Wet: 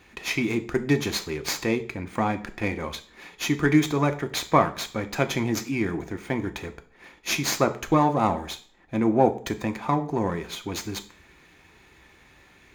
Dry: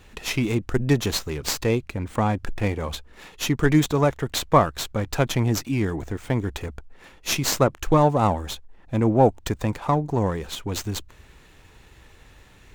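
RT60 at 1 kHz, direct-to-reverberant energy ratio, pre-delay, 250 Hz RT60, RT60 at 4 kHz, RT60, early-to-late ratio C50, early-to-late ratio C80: 0.45 s, 8.0 dB, 3 ms, 0.50 s, 0.40 s, 0.45 s, 16.0 dB, 20.0 dB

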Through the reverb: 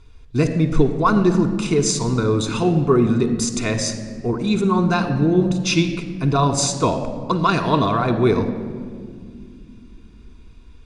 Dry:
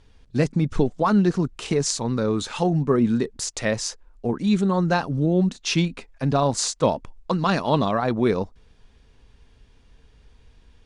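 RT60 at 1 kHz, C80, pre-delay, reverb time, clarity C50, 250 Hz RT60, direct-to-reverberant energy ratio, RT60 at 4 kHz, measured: 1.7 s, 10.5 dB, 3 ms, 2.1 s, 9.0 dB, 4.1 s, 4.5 dB, 1.1 s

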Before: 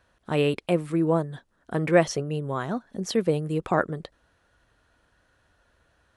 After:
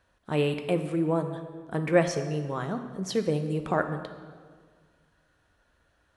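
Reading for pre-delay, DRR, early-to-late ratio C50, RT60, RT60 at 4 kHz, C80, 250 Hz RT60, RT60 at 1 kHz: 5 ms, 7.0 dB, 9.0 dB, 1.7 s, 1.2 s, 10.5 dB, 1.9 s, 1.6 s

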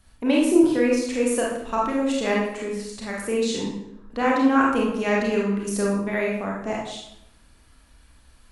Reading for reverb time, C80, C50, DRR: 0.80 s, 5.5 dB, 1.5 dB, -3.5 dB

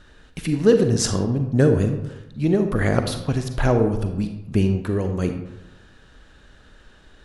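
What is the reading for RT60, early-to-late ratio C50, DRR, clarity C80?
1.0 s, 7.5 dB, 6.5 dB, 10.0 dB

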